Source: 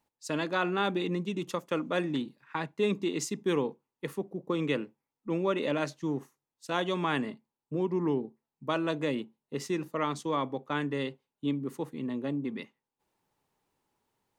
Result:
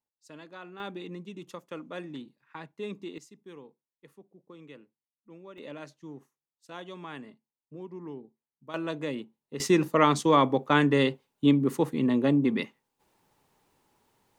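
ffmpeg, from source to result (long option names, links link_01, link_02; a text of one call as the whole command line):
ffmpeg -i in.wav -af "asetnsamples=nb_out_samples=441:pad=0,asendcmd='0.8 volume volume -9dB;3.18 volume volume -19dB;5.58 volume volume -12dB;8.74 volume volume -2.5dB;9.6 volume volume 9.5dB',volume=-16dB" out.wav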